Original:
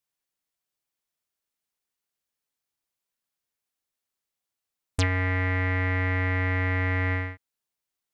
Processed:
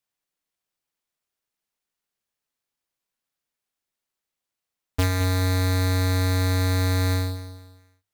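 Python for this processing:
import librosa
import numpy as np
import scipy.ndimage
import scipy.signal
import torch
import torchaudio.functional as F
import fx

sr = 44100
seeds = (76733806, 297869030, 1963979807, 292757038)

p1 = fx.halfwave_hold(x, sr)
p2 = fx.hum_notches(p1, sr, base_hz=50, count=2)
p3 = p2 + fx.echo_feedback(p2, sr, ms=216, feedback_pct=34, wet_db=-13.0, dry=0)
y = p3 * librosa.db_to_amplitude(-2.5)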